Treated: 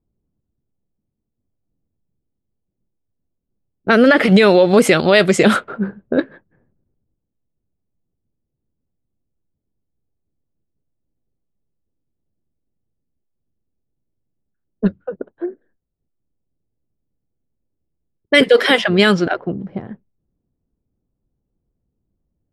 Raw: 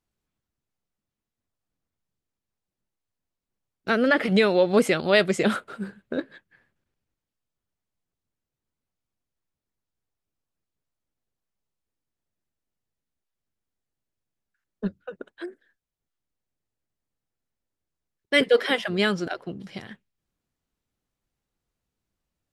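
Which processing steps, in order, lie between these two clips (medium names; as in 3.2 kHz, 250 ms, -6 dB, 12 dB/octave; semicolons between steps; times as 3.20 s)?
level-controlled noise filter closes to 390 Hz, open at -18.5 dBFS; loudness maximiser +13 dB; trim -1 dB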